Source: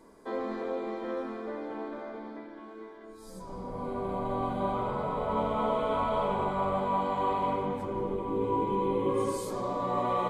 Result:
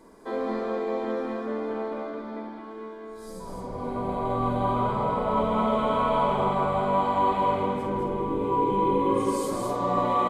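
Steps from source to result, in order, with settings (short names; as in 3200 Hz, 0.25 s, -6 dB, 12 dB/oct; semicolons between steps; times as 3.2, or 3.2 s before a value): doubler 50 ms -7 dB; on a send: echo 0.209 s -4.5 dB; on the sum: gain +3 dB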